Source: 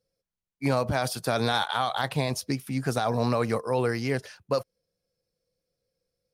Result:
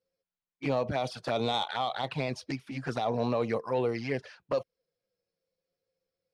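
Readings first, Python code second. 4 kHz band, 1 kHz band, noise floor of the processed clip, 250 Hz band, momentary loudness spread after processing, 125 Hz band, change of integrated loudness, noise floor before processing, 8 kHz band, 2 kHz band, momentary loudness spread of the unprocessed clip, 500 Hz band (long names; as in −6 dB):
−4.5 dB, −4.0 dB, below −85 dBFS, −4.5 dB, 7 LU, −7.5 dB, −4.0 dB, below −85 dBFS, −14.0 dB, −6.5 dB, 5 LU, −2.5 dB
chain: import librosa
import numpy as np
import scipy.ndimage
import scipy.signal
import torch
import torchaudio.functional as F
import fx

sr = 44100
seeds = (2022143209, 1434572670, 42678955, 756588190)

y = scipy.signal.sosfilt(scipy.signal.butter(2, 3900.0, 'lowpass', fs=sr, output='sos'), x)
y = fx.low_shelf(y, sr, hz=170.0, db=-11.5)
y = fx.env_flanger(y, sr, rest_ms=11.4, full_db=-24.0)
y = 10.0 ** (-17.5 / 20.0) * np.tanh(y / 10.0 ** (-17.5 / 20.0))
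y = y * librosa.db_to_amplitude(1.0)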